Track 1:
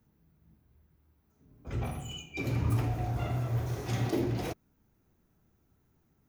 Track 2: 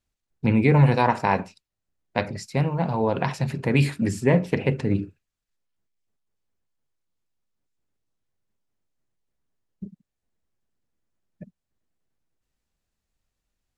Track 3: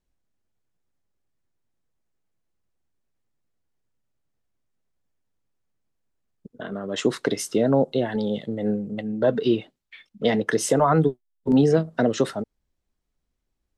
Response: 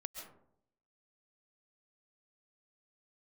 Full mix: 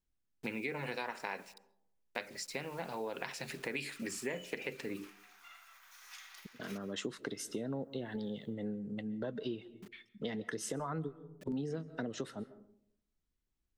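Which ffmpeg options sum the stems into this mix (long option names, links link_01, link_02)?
-filter_complex "[0:a]acompressor=threshold=-36dB:ratio=4,highpass=frequency=1200:width=0.5412,highpass=frequency=1200:width=1.3066,adelay=2250,volume=-4.5dB,asplit=2[link_01][link_02];[link_02]volume=-4dB[link_03];[1:a]highpass=500,equalizer=frequency=1000:width=2.1:gain=-7.5,acrusher=bits=8:mix=0:aa=0.000001,volume=-1dB,asplit=2[link_04][link_05];[link_05]volume=-20dB[link_06];[2:a]volume=-8.5dB,asplit=2[link_07][link_08];[link_08]volume=-12dB[link_09];[3:a]atrim=start_sample=2205[link_10];[link_03][link_06][link_09]amix=inputs=3:normalize=0[link_11];[link_11][link_10]afir=irnorm=-1:irlink=0[link_12];[link_01][link_04][link_07][link_12]amix=inputs=4:normalize=0,equalizer=frequency=650:width_type=o:width=0.92:gain=-6.5,acompressor=threshold=-37dB:ratio=4"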